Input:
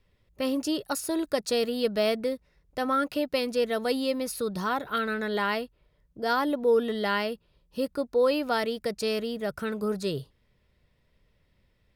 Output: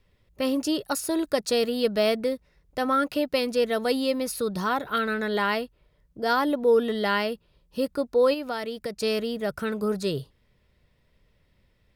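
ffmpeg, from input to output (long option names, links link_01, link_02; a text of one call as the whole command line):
ffmpeg -i in.wav -filter_complex "[0:a]asplit=3[link_01][link_02][link_03];[link_01]afade=type=out:start_time=8.33:duration=0.02[link_04];[link_02]acompressor=threshold=-33dB:ratio=2.5,afade=type=in:start_time=8.33:duration=0.02,afade=type=out:start_time=9.01:duration=0.02[link_05];[link_03]afade=type=in:start_time=9.01:duration=0.02[link_06];[link_04][link_05][link_06]amix=inputs=3:normalize=0,volume=2.5dB" out.wav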